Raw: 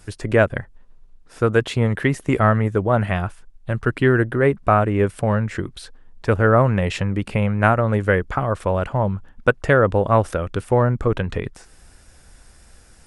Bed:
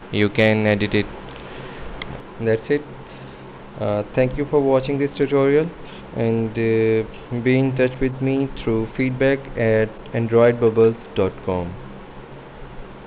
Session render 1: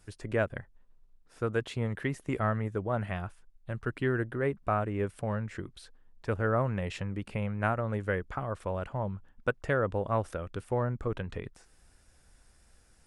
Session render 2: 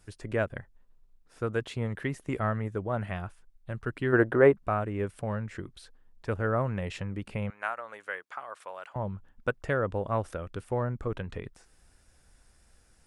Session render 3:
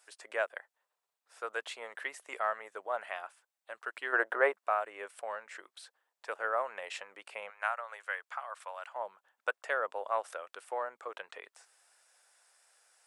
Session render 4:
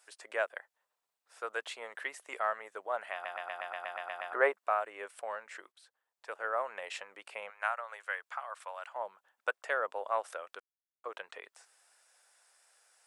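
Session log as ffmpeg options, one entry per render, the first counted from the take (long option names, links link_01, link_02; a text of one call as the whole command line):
ffmpeg -i in.wav -af "volume=-13dB" out.wav
ffmpeg -i in.wav -filter_complex "[0:a]asplit=3[link_01][link_02][link_03];[link_01]afade=type=out:start_time=4.12:duration=0.02[link_04];[link_02]equalizer=frequency=720:width=0.36:gain=14,afade=type=in:start_time=4.12:duration=0.02,afade=type=out:start_time=4.52:duration=0.02[link_05];[link_03]afade=type=in:start_time=4.52:duration=0.02[link_06];[link_04][link_05][link_06]amix=inputs=3:normalize=0,asettb=1/sr,asplit=3[link_07][link_08][link_09];[link_07]atrim=end=7.504[link_10];[link_08]atrim=start=7.5:end=8.96,asetpts=PTS-STARTPTS,afade=type=in:duration=0.004:curve=qsin,afade=type=out:start_time=1.456:duration=0.004:curve=qsin,highpass=900[link_11];[link_09]atrim=start=8.956[link_12];[link_10][link_11]acrossfade=duration=0.004:curve1=hsin:curve2=qsin[link_13];[link_13][link_12]acrossfade=duration=0.004:curve1=qsin:curve2=hsin" out.wav
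ffmpeg -i in.wav -af "highpass=frequency=610:width=0.5412,highpass=frequency=610:width=1.3066,equalizer=frequency=7900:width=7.4:gain=4" out.wav
ffmpeg -i in.wav -filter_complex "[0:a]asplit=14[link_01][link_02][link_03][link_04][link_05][link_06][link_07][link_08][link_09][link_10][link_11][link_12][link_13][link_14];[link_01]atrim=end=3.252[link_15];[link_02]atrim=start=3.128:end=3.252[link_16];[link_03]atrim=start=3.128:end=3.252[link_17];[link_04]atrim=start=3.128:end=3.252[link_18];[link_05]atrim=start=3.128:end=3.252[link_19];[link_06]atrim=start=3.128:end=3.252[link_20];[link_07]atrim=start=3.128:end=3.252[link_21];[link_08]atrim=start=3.128:end=3.252[link_22];[link_09]atrim=start=3.128:end=3.252[link_23];[link_10]atrim=start=3.128:end=3.252[link_24];[link_11]atrim=start=4.328:end=5.72,asetpts=PTS-STARTPTS,afade=type=out:start_time=1.388:duration=0.004:curve=hsin:silence=0.251189[link_25];[link_12]atrim=start=5.72:end=10.6,asetpts=PTS-STARTPTS,afade=type=in:duration=1.04:silence=0.251189,afade=type=out:start_time=4.876:duration=0.004:curve=hsin[link_26];[link_13]atrim=start=10.6:end=11.04,asetpts=PTS-STARTPTS,volume=0[link_27];[link_14]atrim=start=11.04,asetpts=PTS-STARTPTS,afade=type=in:duration=0.004:curve=hsin[link_28];[link_15][link_16]acrossfade=duration=0.004:curve1=hsin:curve2=hsin[link_29];[link_29][link_17]acrossfade=duration=0.004:curve1=hsin:curve2=hsin[link_30];[link_30][link_18]acrossfade=duration=0.004:curve1=hsin:curve2=hsin[link_31];[link_31][link_19]acrossfade=duration=0.004:curve1=hsin:curve2=hsin[link_32];[link_32][link_20]acrossfade=duration=0.004:curve1=hsin:curve2=hsin[link_33];[link_33][link_21]acrossfade=duration=0.004:curve1=hsin:curve2=hsin[link_34];[link_34][link_22]acrossfade=duration=0.004:curve1=hsin:curve2=hsin[link_35];[link_35][link_23]acrossfade=duration=0.004:curve1=hsin:curve2=hsin[link_36];[link_36][link_24]acrossfade=duration=0.004:curve1=hsin:curve2=hsin[link_37];[link_25][link_26][link_27][link_28]concat=n=4:v=0:a=1[link_38];[link_37][link_38]acrossfade=duration=0.004:curve1=hsin:curve2=hsin" out.wav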